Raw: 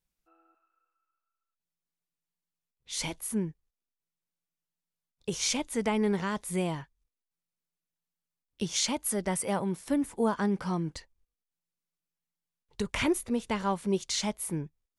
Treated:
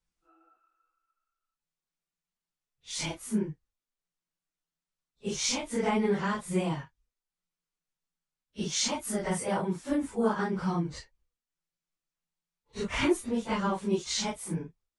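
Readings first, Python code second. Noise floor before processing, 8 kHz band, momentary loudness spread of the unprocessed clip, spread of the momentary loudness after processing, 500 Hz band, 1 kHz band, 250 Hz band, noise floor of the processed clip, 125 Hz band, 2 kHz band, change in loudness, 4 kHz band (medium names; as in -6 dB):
under -85 dBFS, -1.0 dB, 9 LU, 11 LU, +0.5 dB, +1.0 dB, 0.0 dB, under -85 dBFS, +0.5 dB, +1.0 dB, 0.0 dB, 0.0 dB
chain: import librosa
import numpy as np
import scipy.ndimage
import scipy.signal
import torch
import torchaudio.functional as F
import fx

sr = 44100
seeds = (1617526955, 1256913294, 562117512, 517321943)

y = fx.phase_scramble(x, sr, seeds[0], window_ms=100)
y = scipy.signal.sosfilt(scipy.signal.butter(4, 9200.0, 'lowpass', fs=sr, output='sos'), y)
y = fx.peak_eq(y, sr, hz=1300.0, db=2.5, octaves=0.77)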